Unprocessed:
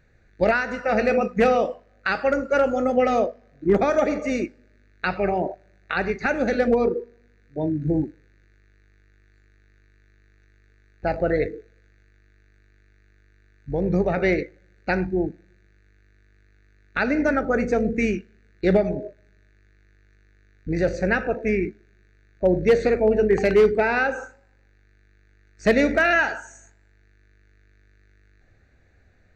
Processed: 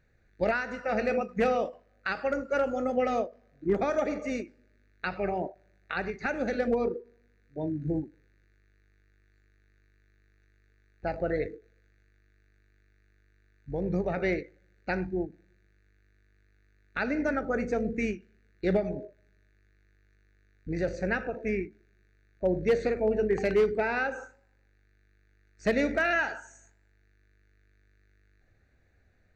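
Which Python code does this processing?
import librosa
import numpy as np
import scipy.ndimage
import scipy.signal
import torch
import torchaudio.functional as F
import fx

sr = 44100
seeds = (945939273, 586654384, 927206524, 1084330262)

y = fx.end_taper(x, sr, db_per_s=240.0)
y = y * 10.0 ** (-7.5 / 20.0)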